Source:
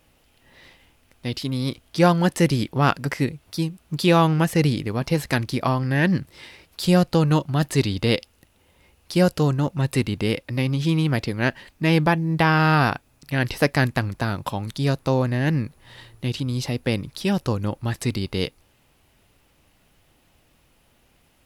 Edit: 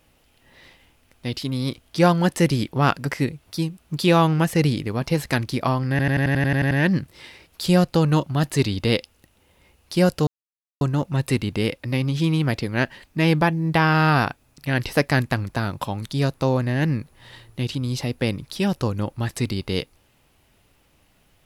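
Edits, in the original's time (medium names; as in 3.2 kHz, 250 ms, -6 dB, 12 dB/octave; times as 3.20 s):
5.90 s: stutter 0.09 s, 10 plays
9.46 s: insert silence 0.54 s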